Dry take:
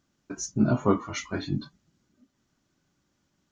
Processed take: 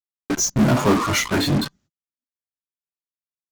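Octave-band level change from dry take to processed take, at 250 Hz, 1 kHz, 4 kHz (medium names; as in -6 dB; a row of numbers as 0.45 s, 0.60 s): +7.0 dB, +10.0 dB, +15.5 dB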